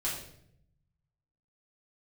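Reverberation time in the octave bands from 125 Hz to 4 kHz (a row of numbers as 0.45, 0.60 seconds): 1.6, 1.1, 0.80, 0.60, 0.60, 0.55 seconds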